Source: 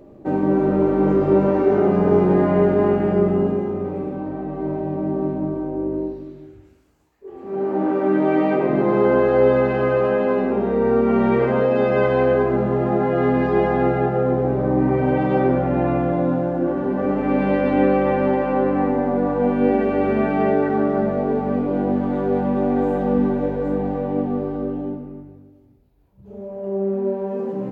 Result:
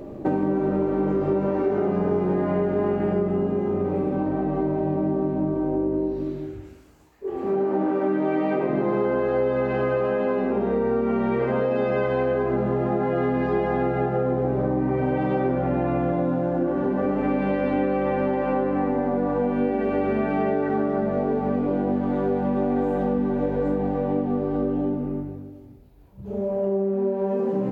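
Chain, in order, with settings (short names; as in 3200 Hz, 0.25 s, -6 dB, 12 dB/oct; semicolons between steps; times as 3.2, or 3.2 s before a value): compressor, threshold -29 dBFS, peak gain reduction 16.5 dB; gain +8 dB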